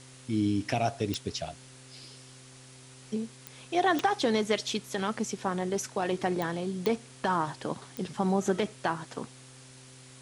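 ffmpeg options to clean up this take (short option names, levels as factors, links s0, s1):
-af "adeclick=t=4,bandreject=f=129.4:t=h:w=4,bandreject=f=258.8:t=h:w=4,bandreject=f=388.2:t=h:w=4,bandreject=f=517.6:t=h:w=4,afwtdn=0.0028"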